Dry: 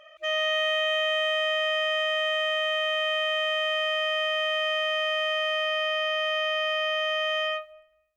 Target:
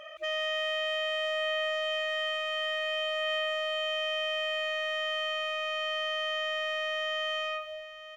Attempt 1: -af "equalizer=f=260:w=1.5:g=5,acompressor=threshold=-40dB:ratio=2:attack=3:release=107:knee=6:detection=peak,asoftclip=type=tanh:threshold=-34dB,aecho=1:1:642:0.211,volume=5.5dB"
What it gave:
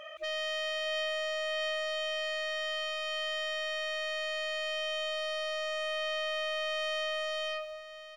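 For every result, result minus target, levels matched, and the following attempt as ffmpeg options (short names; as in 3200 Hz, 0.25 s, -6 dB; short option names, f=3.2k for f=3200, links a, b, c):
soft clip: distortion +13 dB; echo 0.377 s early
-af "equalizer=f=260:w=1.5:g=5,acompressor=threshold=-40dB:ratio=2:attack=3:release=107:knee=6:detection=peak,asoftclip=type=tanh:threshold=-25dB,aecho=1:1:642:0.211,volume=5.5dB"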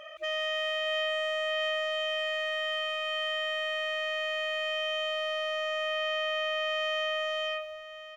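echo 0.377 s early
-af "equalizer=f=260:w=1.5:g=5,acompressor=threshold=-40dB:ratio=2:attack=3:release=107:knee=6:detection=peak,asoftclip=type=tanh:threshold=-25dB,aecho=1:1:1019:0.211,volume=5.5dB"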